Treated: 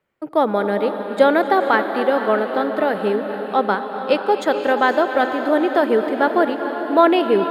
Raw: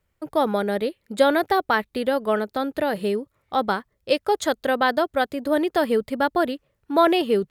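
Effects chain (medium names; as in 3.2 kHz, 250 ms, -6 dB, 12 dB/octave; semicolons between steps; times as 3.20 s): three-band isolator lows -23 dB, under 160 Hz, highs -12 dB, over 3.1 kHz; echo that smears into a reverb 477 ms, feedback 50%, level -8.5 dB; gated-style reverb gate 300 ms rising, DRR 11 dB; trim +4 dB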